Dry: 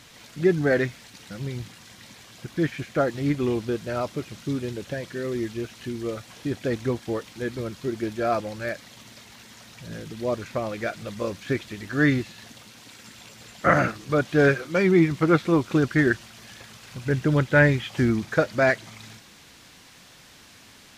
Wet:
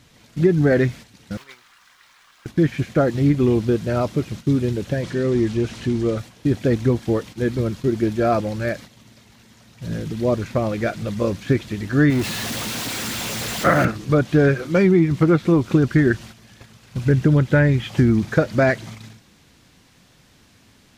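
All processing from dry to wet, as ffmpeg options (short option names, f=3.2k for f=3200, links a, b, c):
-filter_complex "[0:a]asettb=1/sr,asplit=3[a][b][c];[a]atrim=end=1.374[d];[b]atrim=start=1.37:end=2.46,asetpts=PTS-STARTPTS,afade=t=in:d=0.004:c=qsin,afade=t=out:st=1.086:d=0.004:c=qsin,highpass=f=1.2k:t=q:w=2.5,highshelf=f=7.2k:g=-6.5,aeval=exprs='val(0)*gte(abs(val(0)),0.00251)':c=same[e];[c]atrim=start=2.456[f];[d][e]acrossfade=d=0.004:c1=hsin:c2=qsin[g];[g][f]acrossfade=d=0.004:c1=qsin:c2=hsin,asettb=1/sr,asplit=3[h][i][j];[h]atrim=end=5.034[k];[i]atrim=start=5.03:end=6.18,asetpts=PTS-STARTPTS,afade=t=in:d=0.004:c=qsin,afade=t=out:st=1.146:d=0.004:c=qsin,aeval=exprs='val(0)+0.5*0.00891*sgn(val(0))':c=same,lowpass=8.5k[l];[j]atrim=start=6.176[m];[k][l]acrossfade=d=0.004:c1=hsin:c2=qsin[n];[n][m]acrossfade=d=0.004:c1=qsin:c2=hsin,asettb=1/sr,asplit=3[o][p][q];[o]atrim=end=12.104[r];[p]atrim=start=12.1:end=13.85,asetpts=PTS-STARTPTS,afade=t=in:d=0.004:c=qsin,afade=t=out:st=1.746:d=0.004:c=qsin,aeval=exprs='val(0)+0.5*0.0531*sgn(val(0))':c=same,lowshelf=f=260:g=-8.5[s];[q]atrim=start=13.846[t];[r][s]acrossfade=d=0.004:c1=hsin:c2=qsin[u];[u][t]acrossfade=d=0.004:c1=qsin:c2=hsin,agate=range=-9dB:threshold=-42dB:ratio=16:detection=peak,lowshelf=f=400:g=10,acompressor=threshold=-14dB:ratio=6,volume=2.5dB"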